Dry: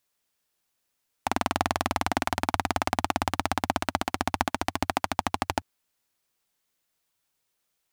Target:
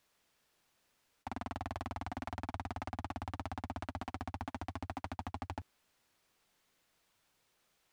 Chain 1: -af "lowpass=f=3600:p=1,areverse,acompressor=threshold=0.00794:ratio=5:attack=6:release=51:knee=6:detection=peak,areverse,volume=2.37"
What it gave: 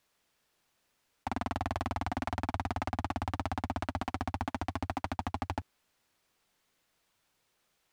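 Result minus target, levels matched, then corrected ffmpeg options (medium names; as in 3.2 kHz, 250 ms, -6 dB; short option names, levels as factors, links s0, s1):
compression: peak gain reduction -7 dB
-af "lowpass=f=3600:p=1,areverse,acompressor=threshold=0.00282:ratio=5:attack=6:release=51:knee=6:detection=peak,areverse,volume=2.37"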